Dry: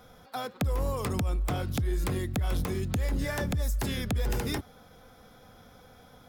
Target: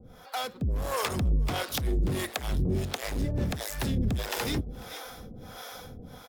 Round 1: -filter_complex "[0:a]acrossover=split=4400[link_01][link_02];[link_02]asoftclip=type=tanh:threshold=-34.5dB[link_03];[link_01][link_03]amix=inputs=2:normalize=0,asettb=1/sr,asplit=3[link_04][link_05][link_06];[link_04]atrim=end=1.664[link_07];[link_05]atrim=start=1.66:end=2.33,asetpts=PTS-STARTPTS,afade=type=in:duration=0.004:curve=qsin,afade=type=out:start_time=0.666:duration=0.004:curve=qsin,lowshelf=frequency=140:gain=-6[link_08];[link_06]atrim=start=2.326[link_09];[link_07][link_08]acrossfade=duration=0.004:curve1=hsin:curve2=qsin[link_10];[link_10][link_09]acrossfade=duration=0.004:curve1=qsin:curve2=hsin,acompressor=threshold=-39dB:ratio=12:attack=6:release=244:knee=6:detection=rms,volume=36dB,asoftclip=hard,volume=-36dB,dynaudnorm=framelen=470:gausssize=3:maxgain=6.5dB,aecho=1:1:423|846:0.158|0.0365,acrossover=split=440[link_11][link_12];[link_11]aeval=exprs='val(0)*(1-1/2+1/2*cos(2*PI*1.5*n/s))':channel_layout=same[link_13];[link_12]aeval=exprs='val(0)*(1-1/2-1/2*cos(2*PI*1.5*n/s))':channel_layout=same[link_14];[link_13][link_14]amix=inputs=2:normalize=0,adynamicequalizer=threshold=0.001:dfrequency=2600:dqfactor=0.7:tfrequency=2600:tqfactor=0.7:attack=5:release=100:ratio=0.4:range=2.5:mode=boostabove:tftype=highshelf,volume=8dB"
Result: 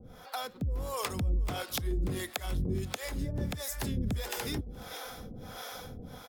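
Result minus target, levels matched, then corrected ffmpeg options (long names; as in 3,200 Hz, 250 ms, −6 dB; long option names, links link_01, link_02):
downward compressor: peak gain reduction +8.5 dB; soft clipping: distortion −5 dB
-filter_complex "[0:a]acrossover=split=4400[link_01][link_02];[link_02]asoftclip=type=tanh:threshold=-45.5dB[link_03];[link_01][link_03]amix=inputs=2:normalize=0,asettb=1/sr,asplit=3[link_04][link_05][link_06];[link_04]atrim=end=1.664[link_07];[link_05]atrim=start=1.66:end=2.33,asetpts=PTS-STARTPTS,afade=type=in:duration=0.004:curve=qsin,afade=type=out:start_time=0.666:duration=0.004:curve=qsin,lowshelf=frequency=140:gain=-6[link_08];[link_06]atrim=start=2.326[link_09];[link_07][link_08]acrossfade=duration=0.004:curve1=hsin:curve2=qsin[link_10];[link_10][link_09]acrossfade=duration=0.004:curve1=qsin:curve2=hsin,acompressor=threshold=-30dB:ratio=12:attack=6:release=244:knee=6:detection=rms,volume=36dB,asoftclip=hard,volume=-36dB,dynaudnorm=framelen=470:gausssize=3:maxgain=6.5dB,aecho=1:1:423|846:0.158|0.0365,acrossover=split=440[link_11][link_12];[link_11]aeval=exprs='val(0)*(1-1/2+1/2*cos(2*PI*1.5*n/s))':channel_layout=same[link_13];[link_12]aeval=exprs='val(0)*(1-1/2-1/2*cos(2*PI*1.5*n/s))':channel_layout=same[link_14];[link_13][link_14]amix=inputs=2:normalize=0,adynamicequalizer=threshold=0.001:dfrequency=2600:dqfactor=0.7:tfrequency=2600:tqfactor=0.7:attack=5:release=100:ratio=0.4:range=2.5:mode=boostabove:tftype=highshelf,volume=8dB"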